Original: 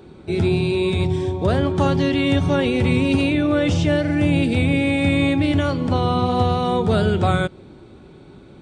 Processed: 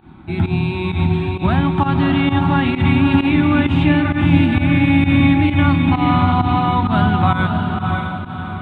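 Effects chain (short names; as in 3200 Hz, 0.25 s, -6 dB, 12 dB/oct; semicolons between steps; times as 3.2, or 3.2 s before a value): EQ curve 310 Hz 0 dB, 460 Hz -22 dB, 810 Hz +4 dB, 1700 Hz +1 dB, 3600 Hz -4 dB, 5600 Hz -30 dB, 10000 Hz -14 dB; on a send: diffused feedback echo 0.603 s, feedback 44%, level -4 dB; on the sum: pump 131 bpm, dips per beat 1, -15 dB, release 0.1 s; gain +3.5 dB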